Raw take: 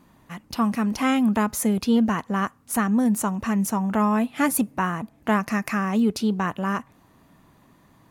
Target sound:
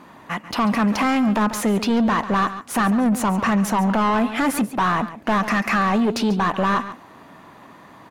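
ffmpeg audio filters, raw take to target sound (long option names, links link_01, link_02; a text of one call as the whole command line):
ffmpeg -i in.wav -filter_complex "[0:a]asplit=2[link_01][link_02];[link_02]highpass=frequency=720:poles=1,volume=24dB,asoftclip=type=tanh:threshold=-8dB[link_03];[link_01][link_03]amix=inputs=2:normalize=0,lowpass=frequency=1700:poles=1,volume=-6dB,aecho=1:1:140:0.188,alimiter=limit=-13.5dB:level=0:latency=1:release=14" out.wav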